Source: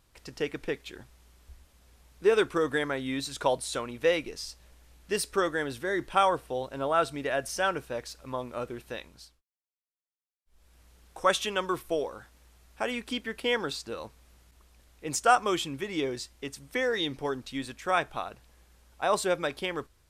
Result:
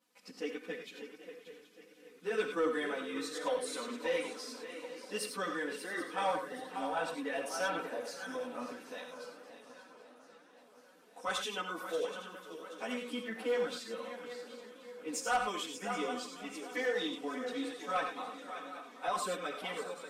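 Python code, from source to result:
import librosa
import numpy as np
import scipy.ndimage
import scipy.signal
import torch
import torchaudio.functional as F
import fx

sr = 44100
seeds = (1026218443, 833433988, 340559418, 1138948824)

y = scipy.signal.sosfilt(scipy.signal.butter(4, 170.0, 'highpass', fs=sr, output='sos'), x)
y = y + 0.78 * np.pad(y, (int(4.0 * sr / 1000.0), 0))[:len(y)]
y = fx.echo_swing(y, sr, ms=777, ratio=3, feedback_pct=35, wet_db=-11.5)
y = fx.chorus_voices(y, sr, voices=4, hz=0.48, base_ms=13, depth_ms=3.7, mix_pct=65)
y = 10.0 ** (-17.5 / 20.0) * np.tanh(y / 10.0 ** (-17.5 / 20.0))
y = fx.rev_gated(y, sr, seeds[0], gate_ms=120, shape='rising', drr_db=5.0)
y = fx.echo_warbled(y, sr, ms=539, feedback_pct=74, rate_hz=2.8, cents=202, wet_db=-19.5)
y = y * 10.0 ** (-7.0 / 20.0)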